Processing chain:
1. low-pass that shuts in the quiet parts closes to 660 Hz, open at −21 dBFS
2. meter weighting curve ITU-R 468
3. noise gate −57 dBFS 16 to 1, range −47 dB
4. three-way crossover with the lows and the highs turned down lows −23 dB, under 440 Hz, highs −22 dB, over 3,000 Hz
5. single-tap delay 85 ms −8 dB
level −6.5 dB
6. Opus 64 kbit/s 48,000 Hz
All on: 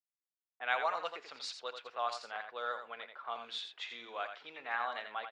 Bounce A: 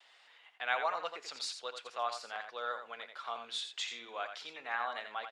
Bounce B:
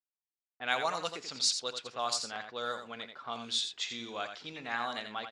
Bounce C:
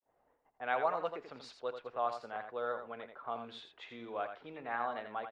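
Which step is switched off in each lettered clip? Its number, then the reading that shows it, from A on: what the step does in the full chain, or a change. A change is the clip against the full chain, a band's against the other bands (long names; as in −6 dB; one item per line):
1, 8 kHz band +7.5 dB
4, 8 kHz band +16.5 dB
2, 250 Hz band +13.0 dB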